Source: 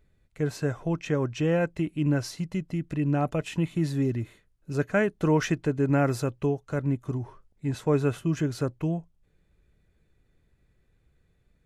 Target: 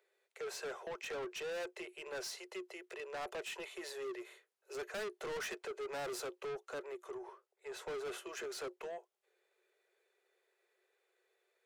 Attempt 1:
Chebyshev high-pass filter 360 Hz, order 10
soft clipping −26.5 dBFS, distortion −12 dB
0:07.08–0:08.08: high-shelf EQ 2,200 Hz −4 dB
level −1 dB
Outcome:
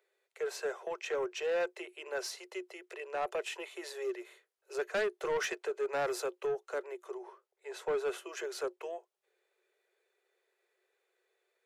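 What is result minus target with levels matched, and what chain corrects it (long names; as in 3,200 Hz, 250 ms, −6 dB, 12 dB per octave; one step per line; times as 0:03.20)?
soft clipping: distortion −8 dB
Chebyshev high-pass filter 360 Hz, order 10
soft clipping −38 dBFS, distortion −4 dB
0:07.08–0:08.08: high-shelf EQ 2,200 Hz −4 dB
level −1 dB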